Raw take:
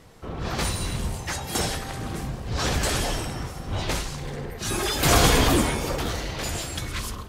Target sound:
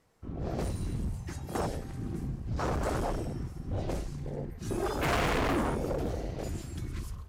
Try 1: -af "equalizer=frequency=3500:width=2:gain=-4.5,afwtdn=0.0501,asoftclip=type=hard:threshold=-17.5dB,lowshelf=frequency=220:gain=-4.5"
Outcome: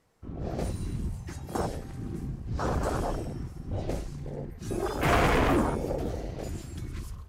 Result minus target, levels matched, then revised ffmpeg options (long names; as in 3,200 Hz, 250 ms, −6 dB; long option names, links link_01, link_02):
hard clipping: distortion −7 dB
-af "equalizer=frequency=3500:width=2:gain=-4.5,afwtdn=0.0501,asoftclip=type=hard:threshold=-24.5dB,lowshelf=frequency=220:gain=-4.5"